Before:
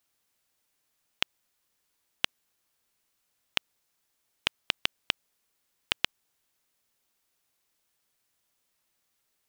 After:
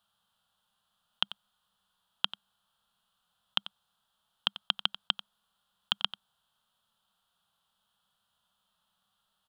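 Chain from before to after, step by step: harmonic-percussive split percussive -9 dB; EQ curve 140 Hz 0 dB, 200 Hz +8 dB, 290 Hz -16 dB, 770 Hz +4 dB, 1400 Hz +7 dB, 2200 Hz -16 dB, 3200 Hz +9 dB, 5800 Hz -12 dB, 10000 Hz -6 dB, 16000 Hz -13 dB; echo 91 ms -15 dB; gain +4.5 dB

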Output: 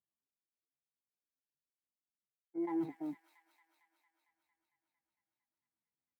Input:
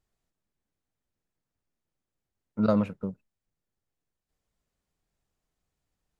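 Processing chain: HPF 87 Hz 12 dB/oct; resonant high shelf 1700 Hz -8 dB, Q 1.5; modulation noise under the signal 19 dB; reverse; compressor 16:1, threshold -40 dBFS, peak gain reduction 22.5 dB; reverse; pitch shift +8 st; sine folder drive 4 dB, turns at -32 dBFS; doubler 15 ms -10.5 dB; on a send: thin delay 0.227 s, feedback 79%, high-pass 1800 Hz, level -3 dB; on the sum: spectral expander 1.5:1; gain +1 dB

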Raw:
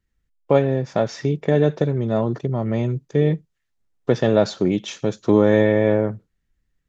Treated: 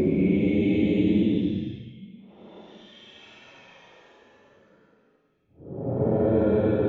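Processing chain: low-pass opened by the level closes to 320 Hz, open at -10.5 dBFS; Paulstretch 17×, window 0.05 s, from 4.69; gain -2.5 dB

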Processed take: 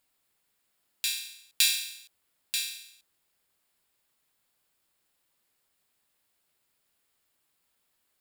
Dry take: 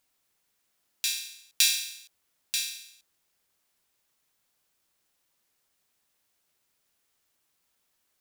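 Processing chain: bell 6000 Hz -9.5 dB 0.21 oct

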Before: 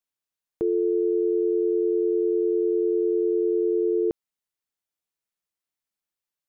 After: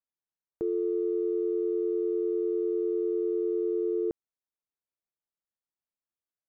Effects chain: Wiener smoothing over 15 samples; gain -5.5 dB

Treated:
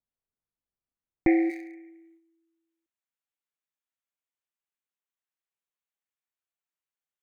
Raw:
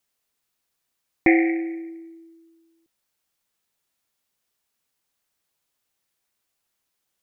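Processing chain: Wiener smoothing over 9 samples; gate -46 dBFS, range -7 dB; tilt -3 dB/oct, from 1.49 s +3 dB/oct; gain -8.5 dB

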